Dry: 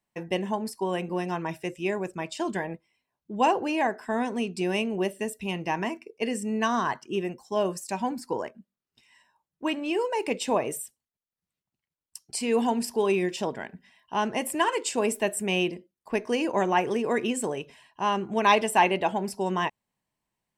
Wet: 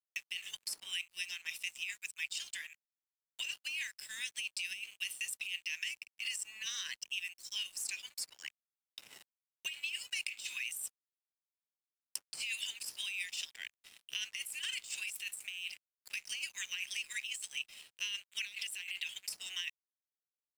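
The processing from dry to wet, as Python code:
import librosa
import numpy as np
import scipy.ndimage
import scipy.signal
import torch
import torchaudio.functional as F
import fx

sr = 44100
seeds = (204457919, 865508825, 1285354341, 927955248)

y = scipy.signal.sosfilt(scipy.signal.butter(6, 2400.0, 'highpass', fs=sr, output='sos'), x)
y = fx.over_compress(y, sr, threshold_db=-42.0, ratio=-1.0)
y = np.sign(y) * np.maximum(np.abs(y) - 10.0 ** (-58.0 / 20.0), 0.0)
y = fx.band_squash(y, sr, depth_pct=70)
y = y * 10.0 ** (3.0 / 20.0)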